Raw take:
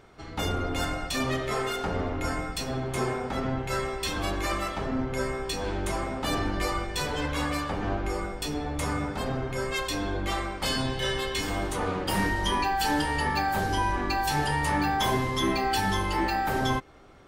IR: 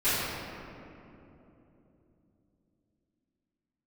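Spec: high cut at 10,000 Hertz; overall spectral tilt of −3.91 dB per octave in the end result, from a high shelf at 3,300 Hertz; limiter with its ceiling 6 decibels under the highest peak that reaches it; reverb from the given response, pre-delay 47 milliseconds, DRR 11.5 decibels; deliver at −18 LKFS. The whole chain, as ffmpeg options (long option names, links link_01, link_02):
-filter_complex "[0:a]lowpass=10000,highshelf=frequency=3300:gain=6,alimiter=limit=-18.5dB:level=0:latency=1,asplit=2[link_01][link_02];[1:a]atrim=start_sample=2205,adelay=47[link_03];[link_02][link_03]afir=irnorm=-1:irlink=0,volume=-25.5dB[link_04];[link_01][link_04]amix=inputs=2:normalize=0,volume=10.5dB"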